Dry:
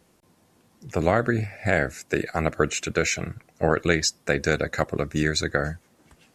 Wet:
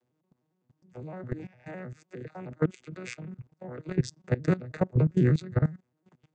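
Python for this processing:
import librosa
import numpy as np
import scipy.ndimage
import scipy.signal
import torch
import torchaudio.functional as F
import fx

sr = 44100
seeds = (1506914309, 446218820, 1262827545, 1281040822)

y = fx.vocoder_arp(x, sr, chord='major triad', root=47, every_ms=102)
y = fx.low_shelf(y, sr, hz=220.0, db=12.0, at=(3.96, 5.66))
y = fx.level_steps(y, sr, step_db=19)
y = y * 10.0 ** (-1.5 / 20.0)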